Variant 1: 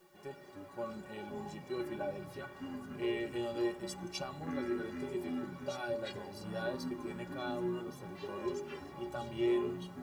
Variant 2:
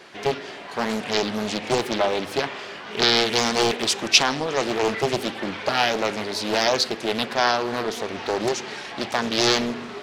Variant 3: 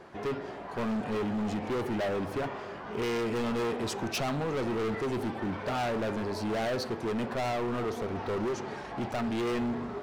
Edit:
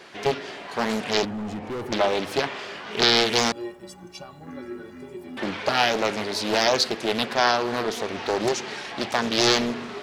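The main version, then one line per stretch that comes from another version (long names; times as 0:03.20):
2
0:01.25–0:01.92: punch in from 3
0:03.52–0:05.37: punch in from 1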